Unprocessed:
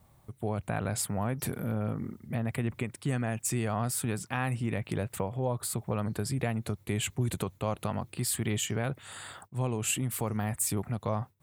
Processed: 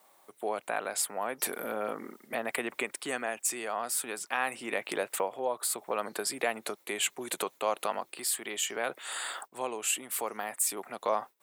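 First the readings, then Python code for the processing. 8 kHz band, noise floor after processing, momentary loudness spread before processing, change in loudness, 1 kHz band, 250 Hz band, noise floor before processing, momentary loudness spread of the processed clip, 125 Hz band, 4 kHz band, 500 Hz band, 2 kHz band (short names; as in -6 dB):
+2.0 dB, -66 dBFS, 5 LU, -0.5 dB, +3.5 dB, -9.5 dB, -62 dBFS, 6 LU, -28.5 dB, +3.0 dB, +2.0 dB, +4.5 dB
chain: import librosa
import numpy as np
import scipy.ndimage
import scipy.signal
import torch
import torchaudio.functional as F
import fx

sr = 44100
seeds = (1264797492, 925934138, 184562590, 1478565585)

y = scipy.signal.sosfilt(scipy.signal.bessel(4, 530.0, 'highpass', norm='mag', fs=sr, output='sos'), x)
y = fx.rider(y, sr, range_db=4, speed_s=0.5)
y = y * librosa.db_to_amplitude(4.0)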